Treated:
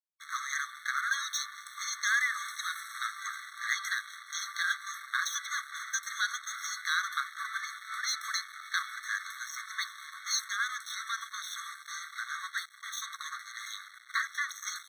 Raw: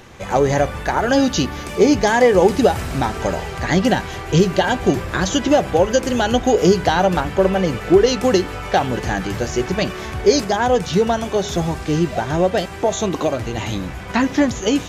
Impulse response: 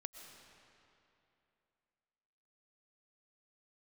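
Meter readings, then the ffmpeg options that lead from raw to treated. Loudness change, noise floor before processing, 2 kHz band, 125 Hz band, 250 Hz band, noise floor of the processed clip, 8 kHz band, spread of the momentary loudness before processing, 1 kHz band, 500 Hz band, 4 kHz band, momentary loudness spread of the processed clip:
−16.0 dB, −31 dBFS, −6.0 dB, below −40 dB, below −40 dB, −52 dBFS, −7.0 dB, 8 LU, −17.0 dB, below −40 dB, −10.0 dB, 9 LU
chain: -af "aeval=exprs='sgn(val(0))*max(abs(val(0))-0.0376,0)':channel_layout=same,afftfilt=real='re*eq(mod(floor(b*sr/1024/1100),2),1)':imag='im*eq(mod(floor(b*sr/1024/1100),2),1)':win_size=1024:overlap=0.75,volume=-4dB"

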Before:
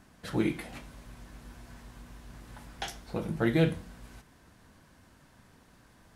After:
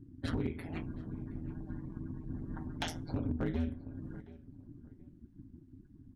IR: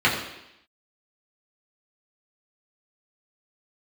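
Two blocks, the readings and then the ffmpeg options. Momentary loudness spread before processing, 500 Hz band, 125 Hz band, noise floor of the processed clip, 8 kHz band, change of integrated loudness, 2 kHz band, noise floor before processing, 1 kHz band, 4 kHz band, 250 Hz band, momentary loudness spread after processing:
23 LU, −9.5 dB, −3.0 dB, −59 dBFS, −5.0 dB, −8.0 dB, −9.0 dB, −60 dBFS, −5.5 dB, −4.5 dB, −4.5 dB, 20 LU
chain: -filter_complex "[0:a]afftdn=noise_reduction=30:noise_floor=-49,equalizer=frequency=180:width=1.4:gain=14,acompressor=threshold=-33dB:ratio=10,asplit=2[link_01][link_02];[link_02]adelay=722,lowpass=frequency=2300:poles=1,volume=-19dB,asplit=2[link_03][link_04];[link_04]adelay=722,lowpass=frequency=2300:poles=1,volume=0.25[link_05];[link_01][link_03][link_05]amix=inputs=3:normalize=0,volume=29dB,asoftclip=hard,volume=-29dB,aeval=exprs='val(0)*sin(2*PI*82*n/s)':channel_layout=same,volume=5dB"

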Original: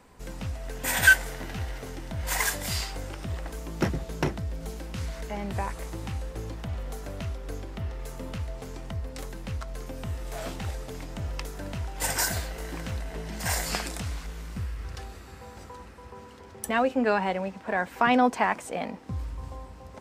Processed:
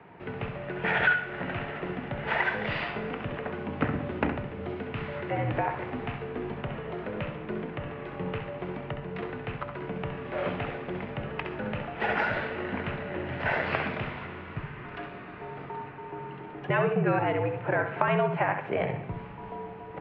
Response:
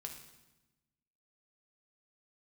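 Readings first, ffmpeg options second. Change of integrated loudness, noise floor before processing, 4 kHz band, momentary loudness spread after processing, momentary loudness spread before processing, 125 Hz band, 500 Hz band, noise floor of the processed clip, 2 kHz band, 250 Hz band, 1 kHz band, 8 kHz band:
−1.5 dB, −46 dBFS, −6.5 dB, 14 LU, 16 LU, −0.5 dB, +2.5 dB, −42 dBFS, −2.0 dB, −0.5 dB, −0.5 dB, below −40 dB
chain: -filter_complex "[0:a]highpass=frequency=190:width_type=q:width=0.5412,highpass=frequency=190:width_type=q:width=1.307,lowpass=frequency=2900:width_type=q:width=0.5176,lowpass=frequency=2900:width_type=q:width=0.7071,lowpass=frequency=2900:width_type=q:width=1.932,afreqshift=-79,acompressor=threshold=-30dB:ratio=4,asplit=2[link_01][link_02];[1:a]atrim=start_sample=2205,adelay=66[link_03];[link_02][link_03]afir=irnorm=-1:irlink=0,volume=-2.5dB[link_04];[link_01][link_04]amix=inputs=2:normalize=0,volume=6dB"

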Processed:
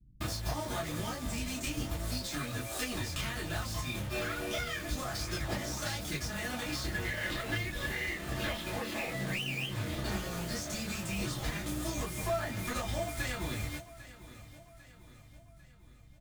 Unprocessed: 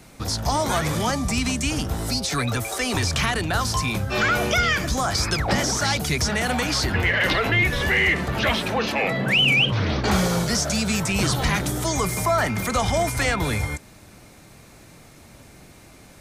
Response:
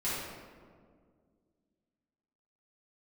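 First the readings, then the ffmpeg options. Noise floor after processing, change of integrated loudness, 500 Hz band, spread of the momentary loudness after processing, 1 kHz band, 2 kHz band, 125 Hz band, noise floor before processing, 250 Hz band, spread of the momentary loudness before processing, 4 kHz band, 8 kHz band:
−56 dBFS, −14.0 dB, −13.0 dB, 3 LU, −16.0 dB, −15.0 dB, −13.0 dB, −48 dBFS, −13.0 dB, 5 LU, −15.0 dB, −13.0 dB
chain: -filter_complex "[0:a]acrossover=split=190[link_01][link_02];[link_02]acrusher=bits=4:mix=0:aa=0.000001[link_03];[link_01][link_03]amix=inputs=2:normalize=0,acompressor=threshold=-29dB:ratio=6,aeval=exprs='0.168*(cos(1*acos(clip(val(0)/0.168,-1,1)))-cos(1*PI/2))+0.0473*(cos(3*acos(clip(val(0)/0.168,-1,1)))-cos(3*PI/2))':channel_layout=same,aecho=1:1:798|1596|2394|3192:0.15|0.0748|0.0374|0.0187[link_04];[1:a]atrim=start_sample=2205,atrim=end_sample=3528,asetrate=74970,aresample=44100[link_05];[link_04][link_05]afir=irnorm=-1:irlink=0,volume=7dB"

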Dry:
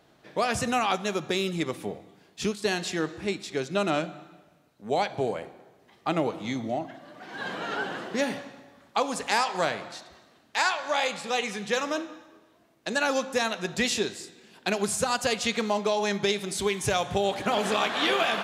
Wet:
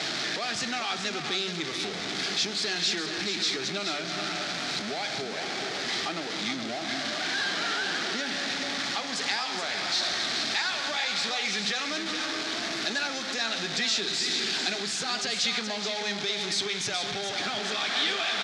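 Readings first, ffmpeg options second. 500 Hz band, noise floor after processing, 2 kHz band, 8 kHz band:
−8.0 dB, −34 dBFS, +1.5 dB, +2.0 dB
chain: -filter_complex "[0:a]aeval=exprs='val(0)+0.5*0.0841*sgn(val(0))':channel_layout=same,acompressor=threshold=-25dB:ratio=3,highpass=170,equalizer=frequency=520:width_type=q:width=4:gain=-8,equalizer=frequency=1000:width_type=q:width=4:gain=-8,equalizer=frequency=2800:width_type=q:width=4:gain=-6,lowpass=frequency=4700:width=0.5412,lowpass=frequency=4700:width=1.3066,asplit=2[link_01][link_02];[link_02]aecho=0:1:425:0.422[link_03];[link_01][link_03]amix=inputs=2:normalize=0,crystalizer=i=8:c=0,volume=-8dB"

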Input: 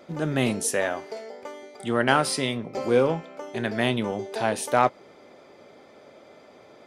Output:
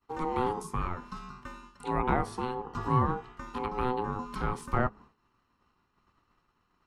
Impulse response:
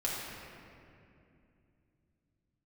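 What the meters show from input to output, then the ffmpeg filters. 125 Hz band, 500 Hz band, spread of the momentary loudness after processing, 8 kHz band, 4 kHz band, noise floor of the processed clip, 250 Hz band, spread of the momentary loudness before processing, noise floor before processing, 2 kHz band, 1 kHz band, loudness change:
−1.5 dB, −10.0 dB, 14 LU, −20.0 dB, −17.5 dB, −75 dBFS, −7.5 dB, 15 LU, −52 dBFS, −12.0 dB, −3.0 dB, −7.0 dB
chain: -filter_complex "[0:a]aeval=exprs='val(0)*sin(2*PI*630*n/s)':channel_layout=same,agate=range=-33dB:threshold=-41dB:ratio=3:detection=peak,acrossover=split=600|1300[link_01][link_02][link_03];[link_03]acompressor=threshold=-45dB:ratio=12[link_04];[link_01][link_02][link_04]amix=inputs=3:normalize=0,bandreject=frequency=210.6:width_type=h:width=4,bandreject=frequency=421.2:width_type=h:width=4,volume=-1.5dB"

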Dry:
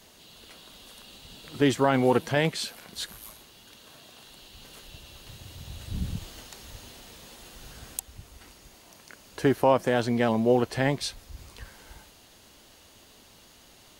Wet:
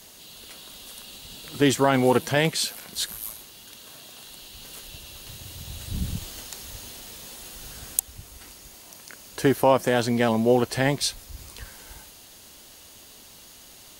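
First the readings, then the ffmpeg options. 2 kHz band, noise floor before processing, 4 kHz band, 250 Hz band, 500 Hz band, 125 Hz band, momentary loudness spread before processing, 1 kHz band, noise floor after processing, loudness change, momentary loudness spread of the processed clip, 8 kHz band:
+3.5 dB, −55 dBFS, +5.5 dB, +2.0 dB, +2.0 dB, +2.0 dB, 23 LU, +2.5 dB, −49 dBFS, +2.5 dB, 22 LU, +9.0 dB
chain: -af "aemphasis=mode=production:type=cd,volume=2.5dB"

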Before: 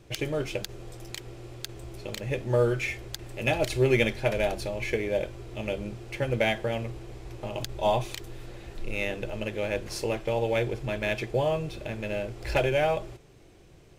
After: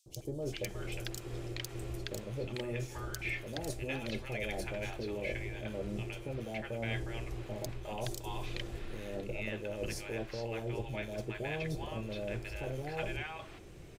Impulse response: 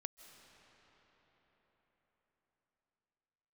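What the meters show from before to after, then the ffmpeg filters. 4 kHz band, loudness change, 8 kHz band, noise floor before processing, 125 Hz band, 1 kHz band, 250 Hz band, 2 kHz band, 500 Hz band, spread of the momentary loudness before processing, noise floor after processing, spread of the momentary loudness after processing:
−8.0 dB, −10.5 dB, −5.0 dB, −54 dBFS, −7.0 dB, −11.5 dB, −7.5 dB, −8.5 dB, −12.0 dB, 15 LU, −49 dBFS, 4 LU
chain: -filter_complex "[0:a]afftfilt=real='re*lt(hypot(re,im),0.447)':imag='im*lt(hypot(re,im),0.447)':win_size=1024:overlap=0.75,areverse,acompressor=threshold=-37dB:ratio=8,areverse,acrossover=split=830|4600[link_01][link_02][link_03];[link_01]adelay=60[link_04];[link_02]adelay=420[link_05];[link_04][link_05][link_03]amix=inputs=3:normalize=0,volume=3dB"

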